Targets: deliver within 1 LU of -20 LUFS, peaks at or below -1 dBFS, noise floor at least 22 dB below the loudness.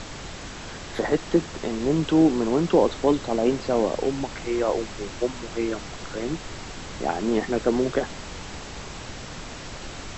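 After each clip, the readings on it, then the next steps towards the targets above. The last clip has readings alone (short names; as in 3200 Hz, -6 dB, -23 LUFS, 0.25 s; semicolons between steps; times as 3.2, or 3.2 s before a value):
noise floor -38 dBFS; noise floor target -47 dBFS; loudness -25.0 LUFS; peak -7.5 dBFS; loudness target -20.0 LUFS
-> noise print and reduce 9 dB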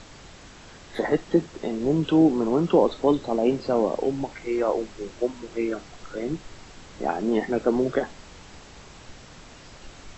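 noise floor -47 dBFS; loudness -25.0 LUFS; peak -7.5 dBFS; loudness target -20.0 LUFS
-> gain +5 dB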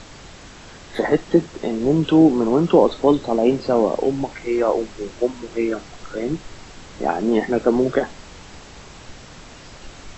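loudness -20.0 LUFS; peak -2.5 dBFS; noise floor -42 dBFS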